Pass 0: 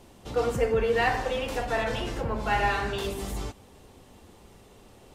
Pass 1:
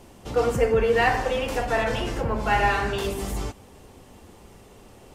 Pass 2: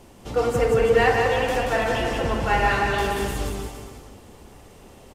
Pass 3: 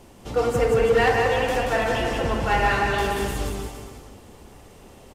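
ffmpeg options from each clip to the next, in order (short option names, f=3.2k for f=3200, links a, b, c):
-af "equalizer=f=3.8k:t=o:w=0.39:g=-4,volume=4dB"
-af "aecho=1:1:180|333|463|573.6|667.6:0.631|0.398|0.251|0.158|0.1"
-af "asoftclip=type=hard:threshold=-12.5dB"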